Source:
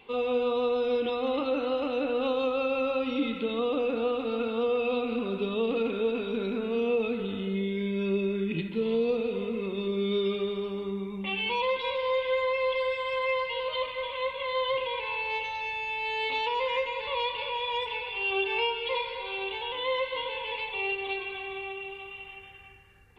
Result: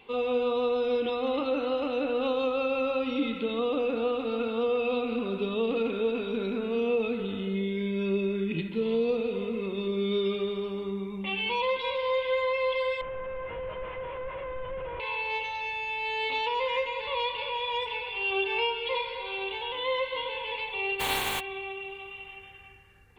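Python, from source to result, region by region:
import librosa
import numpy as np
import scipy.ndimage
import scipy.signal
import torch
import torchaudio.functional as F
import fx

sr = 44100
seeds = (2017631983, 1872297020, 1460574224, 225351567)

y = fx.chain(x, sr, fx.delta_mod(bps=16000, step_db=-47.5),
    fx.peak_eq(hz=250.0, db=-13.0, octaves=0.46),
    fx.env_flatten(amount_pct=50), at=(13.01, 15.0))
y = fx.spec_flatten(y, sr, power=0.31, at=(20.99, 21.39), fade=0.02)
y = fx.peak_eq(y, sr, hz=860.0, db=8.0, octaves=0.32, at=(20.99, 21.39), fade=0.02)
y = fx.env_flatten(y, sr, amount_pct=50, at=(20.99, 21.39), fade=0.02)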